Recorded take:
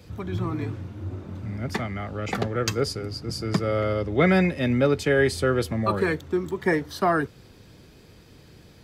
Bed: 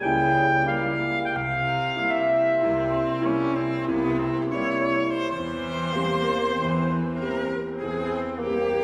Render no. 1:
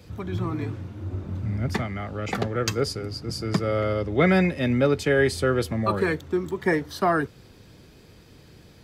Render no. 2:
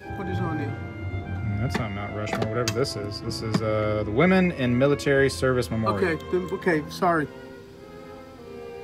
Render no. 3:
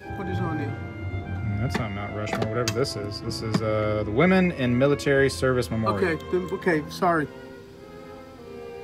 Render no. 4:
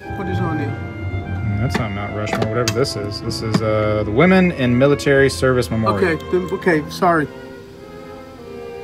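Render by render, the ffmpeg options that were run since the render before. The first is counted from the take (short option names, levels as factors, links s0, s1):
-filter_complex "[0:a]asettb=1/sr,asplit=3[s0][s1][s2];[s0]atrim=end=1.144[s3];[s1]atrim=start=1.14:end=1.82,asetpts=PTS-STARTPTS,afade=t=in:d=0.004:c=qsin,afade=t=out:st=0.676:d=0.004:c=qsin,lowshelf=f=120:g=9.5[s4];[s2]atrim=start=1.816[s5];[s3][s4]acrossfade=d=0.004:c1=hsin:c2=qsin[s6];[s6][s5]acrossfade=d=0.004:c1=qsin:c2=hsin"
-filter_complex "[1:a]volume=0.178[s0];[0:a][s0]amix=inputs=2:normalize=0"
-af anull
-af "volume=2.24,alimiter=limit=0.891:level=0:latency=1"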